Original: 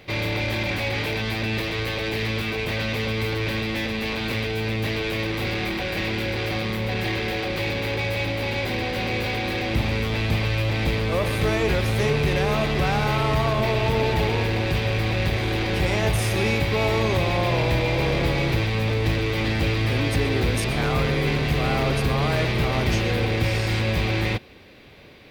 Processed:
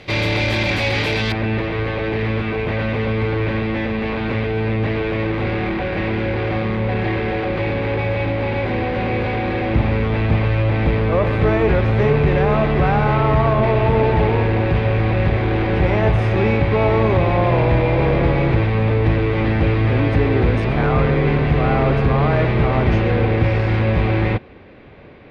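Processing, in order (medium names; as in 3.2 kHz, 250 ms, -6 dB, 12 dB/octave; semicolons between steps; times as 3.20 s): low-pass 7.5 kHz 12 dB/octave, from 1.32 s 1.7 kHz; trim +6.5 dB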